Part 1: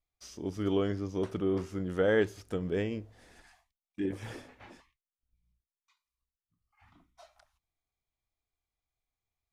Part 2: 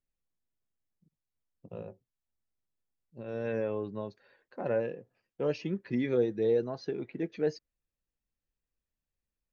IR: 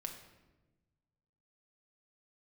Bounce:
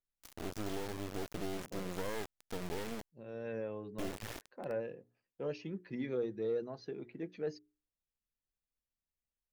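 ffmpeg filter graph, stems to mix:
-filter_complex "[0:a]adynamicequalizer=threshold=0.00316:dfrequency=2900:dqfactor=0.91:tfrequency=2900:tqfactor=0.91:attack=5:release=100:ratio=0.375:range=2:mode=cutabove:tftype=bell,acompressor=threshold=-32dB:ratio=10,acrusher=bits=4:dc=4:mix=0:aa=0.000001,volume=0dB[a];[1:a]bandreject=f=60:t=h:w=6,bandreject=f=120:t=h:w=6,bandreject=f=180:t=h:w=6,bandreject=f=240:t=h:w=6,bandreject=f=300:t=h:w=6,bandreject=f=360:t=h:w=6,bandreject=f=420:t=h:w=6,volume=-7.5dB[b];[a][b]amix=inputs=2:normalize=0,asoftclip=type=tanh:threshold=-24dB"

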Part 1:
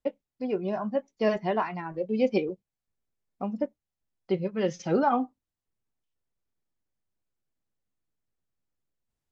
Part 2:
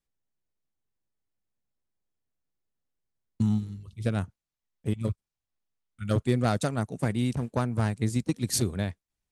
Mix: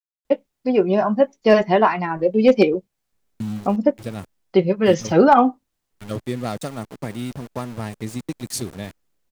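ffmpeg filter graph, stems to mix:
-filter_complex "[0:a]asoftclip=type=hard:threshold=-15dB,adelay=250,volume=2.5dB[a];[1:a]bandreject=f=1.5k:w=7.9,aeval=exprs='val(0)*gte(abs(val(0)),0.0178)':c=same,volume=-10.5dB[b];[a][b]amix=inputs=2:normalize=0,equalizer=f=93:t=o:w=1.4:g=-6,dynaudnorm=f=160:g=3:m=10.5dB"

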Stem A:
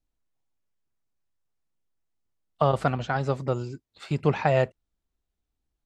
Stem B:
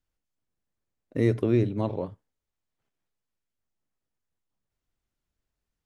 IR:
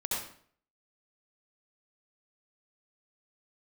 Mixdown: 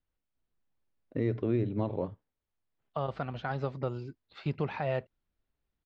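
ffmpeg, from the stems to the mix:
-filter_complex "[0:a]adelay=350,volume=-5dB[a];[1:a]highshelf=f=3.7k:g=-6.5,volume=-1dB,asplit=2[b][c];[c]apad=whole_len=277904[d];[a][d]sidechaincompress=threshold=-37dB:ratio=8:attack=6.4:release=1450[e];[e][b]amix=inputs=2:normalize=0,lowpass=f=4.5k:w=0.5412,lowpass=f=4.5k:w=1.3066,alimiter=limit=-20dB:level=0:latency=1:release=178"

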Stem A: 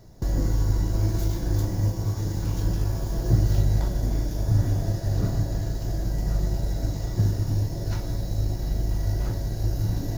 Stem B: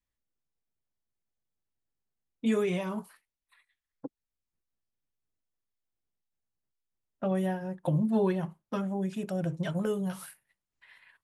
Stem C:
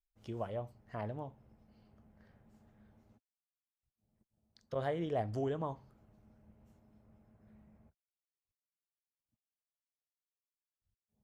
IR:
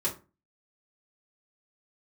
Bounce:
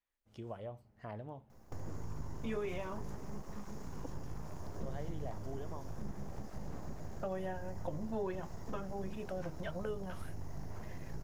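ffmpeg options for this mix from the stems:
-filter_complex "[0:a]acrossover=split=9700[a][b];[b]acompressor=threshold=-58dB:ratio=4:attack=1:release=60[c];[a][c]amix=inputs=2:normalize=0,equalizer=f=160:t=o:w=0.67:g=-8,equalizer=f=1k:t=o:w=0.67:g=8,equalizer=f=4k:t=o:w=0.67:g=-9,aeval=exprs='abs(val(0))':c=same,adelay=1500,volume=-9.5dB[d];[1:a]bass=f=250:g=-13,treble=f=4k:g=-13,volume=1.5dB[e];[2:a]adelay=100,volume=-3dB[f];[d][e][f]amix=inputs=3:normalize=0,acompressor=threshold=-42dB:ratio=2"

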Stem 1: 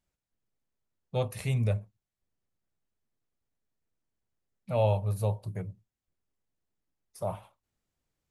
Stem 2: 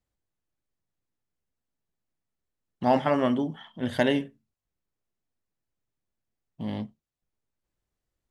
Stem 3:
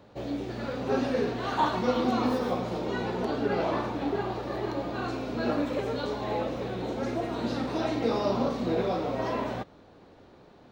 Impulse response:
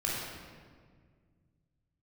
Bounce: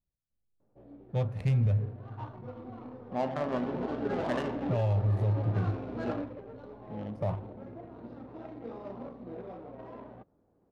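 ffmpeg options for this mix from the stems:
-filter_complex "[0:a]bass=f=250:g=7,treble=f=4k:g=4,dynaudnorm=f=520:g=5:m=14.5dB,volume=-10dB,asplit=2[a][b];[b]volume=-23dB[c];[1:a]adelay=300,volume=-11dB,asplit=2[d][e];[e]volume=-10.5dB[f];[2:a]adelay=600,volume=-5dB,afade=t=in:st=3.35:d=0.47:silence=0.223872,afade=t=out:st=6.11:d=0.25:silence=0.334965[g];[3:a]atrim=start_sample=2205[h];[c][f]amix=inputs=2:normalize=0[i];[i][h]afir=irnorm=-1:irlink=0[j];[a][d][g][j]amix=inputs=4:normalize=0,adynamicsmooth=sensitivity=5:basefreq=910,alimiter=limit=-20.5dB:level=0:latency=1:release=73"

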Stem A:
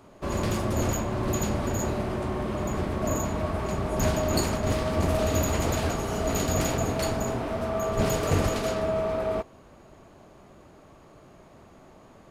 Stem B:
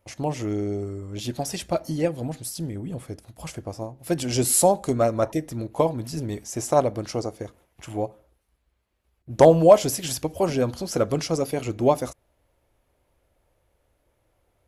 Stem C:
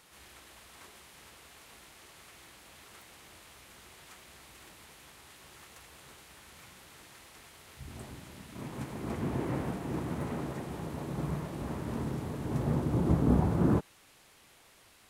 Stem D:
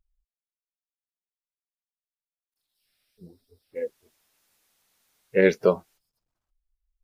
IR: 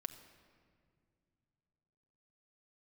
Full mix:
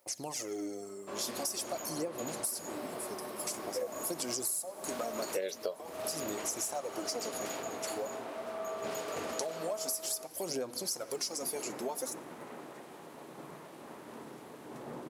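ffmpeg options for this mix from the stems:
-filter_complex "[0:a]adelay=850,volume=-9dB[a];[1:a]acompressor=threshold=-24dB:ratio=2.5,aphaser=in_gain=1:out_gain=1:delay=4.9:decay=0.61:speed=0.47:type=sinusoidal,aexciter=amount=4.1:drive=5:freq=4.3k,volume=-11dB,asplit=2[b][c];[c]volume=-3.5dB[d];[2:a]adelay=2200,volume=-6dB[e];[3:a]equalizer=f=610:w=3:g=12.5,aexciter=amount=6.4:drive=7.8:freq=3.2k,volume=-3.5dB[f];[4:a]atrim=start_sample=2205[g];[d][g]afir=irnorm=-1:irlink=0[h];[a][b][e][f][h]amix=inputs=5:normalize=0,highpass=370,acompressor=threshold=-32dB:ratio=16"

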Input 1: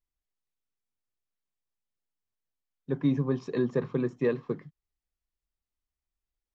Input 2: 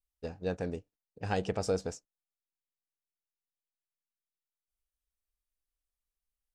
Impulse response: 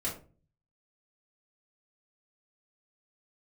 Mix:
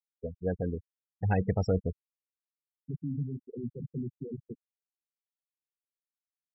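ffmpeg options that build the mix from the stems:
-filter_complex "[0:a]alimiter=level_in=1dB:limit=-24dB:level=0:latency=1:release=13,volume=-1dB,volume=-7dB[a];[1:a]equalizer=f=2.1k:w=4.5:g=7,volume=2.5dB[b];[a][b]amix=inputs=2:normalize=0,afftfilt=real='re*gte(hypot(re,im),0.0501)':imag='im*gte(hypot(re,im),0.0501)':win_size=1024:overlap=0.75,asubboost=boost=5:cutoff=210"

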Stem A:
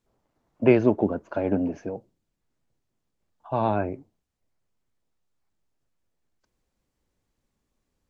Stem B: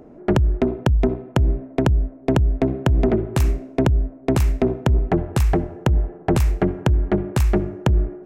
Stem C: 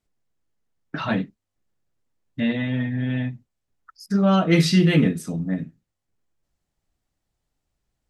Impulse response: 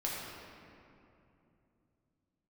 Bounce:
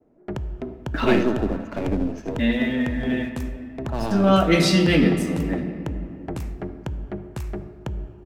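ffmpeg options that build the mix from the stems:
-filter_complex "[0:a]aeval=exprs='if(lt(val(0),0),0.447*val(0),val(0))':c=same,acrossover=split=470|3000[a][b][c];[b]acompressor=threshold=-37dB:ratio=2.5[d];[a][d][c]amix=inputs=3:normalize=0,adynamicequalizer=threshold=0.00398:dfrequency=2200:dqfactor=0.7:tfrequency=2200:tqfactor=0.7:attack=5:release=100:ratio=0.375:range=3:mode=boostabove:tftype=highshelf,adelay=400,volume=2dB,asplit=2[e][f];[f]volume=-7dB[g];[1:a]agate=range=-33dB:threshold=-40dB:ratio=3:detection=peak,volume=-14dB,asplit=2[h][i];[i]volume=-14dB[j];[2:a]highpass=f=200:w=0.5412,highpass=f=200:w=1.3066,aeval=exprs='sgn(val(0))*max(abs(val(0))-0.00266,0)':c=same,volume=-0.5dB,asplit=2[k][l];[l]volume=-6.5dB[m];[3:a]atrim=start_sample=2205[n];[j][m]amix=inputs=2:normalize=0[o];[o][n]afir=irnorm=-1:irlink=0[p];[g]aecho=0:1:78:1[q];[e][h][k][p][q]amix=inputs=5:normalize=0"

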